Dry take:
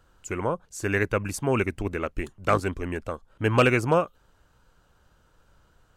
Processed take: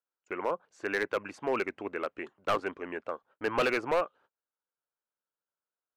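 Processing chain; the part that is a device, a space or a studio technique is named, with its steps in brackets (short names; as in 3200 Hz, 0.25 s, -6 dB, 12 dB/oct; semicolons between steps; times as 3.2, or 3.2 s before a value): walkie-talkie (BPF 400–2400 Hz; hard clip -19.5 dBFS, distortion -10 dB; gate -55 dBFS, range -30 dB); gain -2 dB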